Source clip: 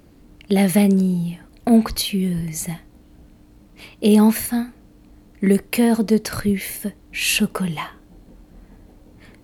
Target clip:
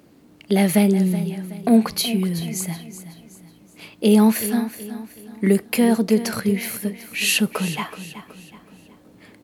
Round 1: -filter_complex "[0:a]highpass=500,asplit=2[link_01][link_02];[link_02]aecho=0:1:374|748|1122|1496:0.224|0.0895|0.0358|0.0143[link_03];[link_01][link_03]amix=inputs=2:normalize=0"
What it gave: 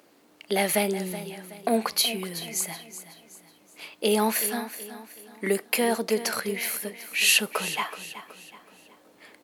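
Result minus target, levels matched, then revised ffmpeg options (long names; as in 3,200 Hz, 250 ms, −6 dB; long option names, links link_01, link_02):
125 Hz band −9.5 dB
-filter_complex "[0:a]highpass=150,asplit=2[link_01][link_02];[link_02]aecho=0:1:374|748|1122|1496:0.224|0.0895|0.0358|0.0143[link_03];[link_01][link_03]amix=inputs=2:normalize=0"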